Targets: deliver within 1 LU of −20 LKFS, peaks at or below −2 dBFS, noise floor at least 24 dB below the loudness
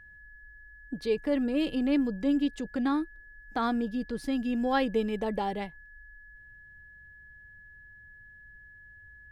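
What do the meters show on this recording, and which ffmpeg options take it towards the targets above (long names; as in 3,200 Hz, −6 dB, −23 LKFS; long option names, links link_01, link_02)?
interfering tone 1,700 Hz; level of the tone −50 dBFS; integrated loudness −30.0 LKFS; sample peak −14.5 dBFS; target loudness −20.0 LKFS
→ -af "bandreject=frequency=1700:width=30"
-af "volume=10dB"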